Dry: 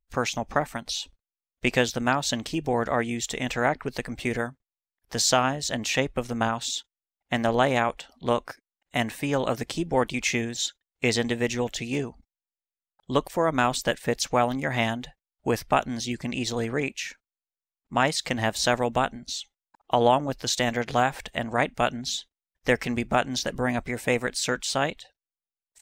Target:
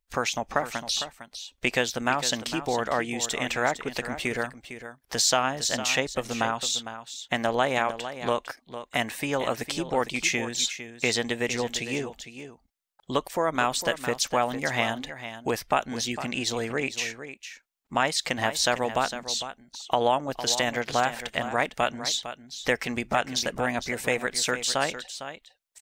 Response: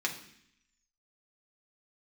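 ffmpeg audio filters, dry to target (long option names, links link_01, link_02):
-af "acompressor=threshold=-35dB:ratio=1.5,lowshelf=frequency=320:gain=-9,aecho=1:1:455:0.266,volume=6dB"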